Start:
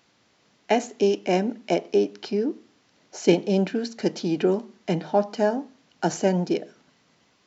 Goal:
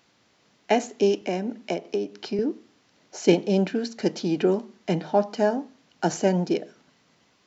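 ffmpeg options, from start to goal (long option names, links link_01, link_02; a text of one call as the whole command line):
ffmpeg -i in.wav -filter_complex "[0:a]asettb=1/sr,asplit=3[link_01][link_02][link_03];[link_01]atrim=end=1.214[link_04];[link_02]atrim=start=1.21:end=2.39,asetpts=PTS-STARTPTS,afade=type=in:duration=0.004:curve=qsin,afade=type=out:start_time=1.176:duration=0.004:curve=qsin,acrossover=split=130[link_05][link_06];[link_06]acompressor=threshold=-24dB:ratio=5[link_07];[link_05][link_07]amix=inputs=2:normalize=0[link_08];[link_03]atrim=start=2.386[link_09];[link_04][link_08]acrossfade=duration=0.004:curve1=hsin:curve2=qsin[link_10];[link_10][link_09]acrossfade=duration=0.004:curve1=qsin:curve2=hsin" out.wav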